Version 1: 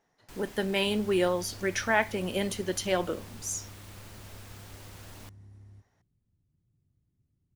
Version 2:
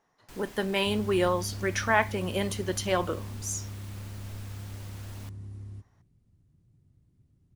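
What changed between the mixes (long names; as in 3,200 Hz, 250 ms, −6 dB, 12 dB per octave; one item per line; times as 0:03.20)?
speech: add parametric band 1,100 Hz +7.5 dB 0.48 octaves
second sound +10.0 dB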